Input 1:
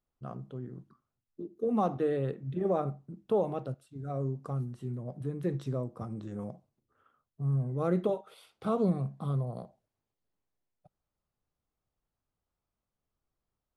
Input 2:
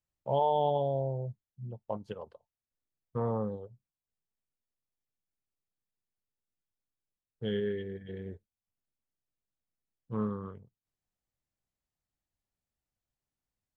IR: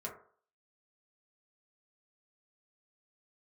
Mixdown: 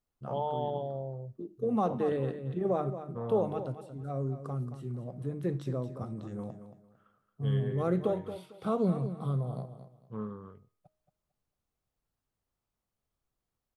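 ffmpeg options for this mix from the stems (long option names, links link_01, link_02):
-filter_complex "[0:a]volume=-0.5dB,asplit=2[link_01][link_02];[link_02]volume=-11dB[link_03];[1:a]volume=-6.5dB,asplit=2[link_04][link_05];[link_05]volume=-19.5dB[link_06];[2:a]atrim=start_sample=2205[link_07];[link_06][link_07]afir=irnorm=-1:irlink=0[link_08];[link_03]aecho=0:1:225|450|675|900:1|0.24|0.0576|0.0138[link_09];[link_01][link_04][link_08][link_09]amix=inputs=4:normalize=0,bandreject=frequency=310.9:width_type=h:width=4,bandreject=frequency=621.8:width_type=h:width=4,bandreject=frequency=932.7:width_type=h:width=4,bandreject=frequency=1243.6:width_type=h:width=4,bandreject=frequency=1554.5:width_type=h:width=4,bandreject=frequency=1865.4:width_type=h:width=4,bandreject=frequency=2176.3:width_type=h:width=4,bandreject=frequency=2487.2:width_type=h:width=4,bandreject=frequency=2798.1:width_type=h:width=4,bandreject=frequency=3109:width_type=h:width=4,bandreject=frequency=3419.9:width_type=h:width=4,bandreject=frequency=3730.8:width_type=h:width=4,bandreject=frequency=4041.7:width_type=h:width=4,bandreject=frequency=4352.6:width_type=h:width=4,bandreject=frequency=4663.5:width_type=h:width=4,bandreject=frequency=4974.4:width_type=h:width=4,bandreject=frequency=5285.3:width_type=h:width=4,bandreject=frequency=5596.2:width_type=h:width=4,bandreject=frequency=5907.1:width_type=h:width=4,bandreject=frequency=6218:width_type=h:width=4,bandreject=frequency=6528.9:width_type=h:width=4,bandreject=frequency=6839.8:width_type=h:width=4,bandreject=frequency=7150.7:width_type=h:width=4,bandreject=frequency=7461.6:width_type=h:width=4,bandreject=frequency=7772.5:width_type=h:width=4,bandreject=frequency=8083.4:width_type=h:width=4,bandreject=frequency=8394.3:width_type=h:width=4,bandreject=frequency=8705.2:width_type=h:width=4,bandreject=frequency=9016.1:width_type=h:width=4,bandreject=frequency=9327:width_type=h:width=4,bandreject=frequency=9637.9:width_type=h:width=4,bandreject=frequency=9948.8:width_type=h:width=4,bandreject=frequency=10259.7:width_type=h:width=4,bandreject=frequency=10570.6:width_type=h:width=4"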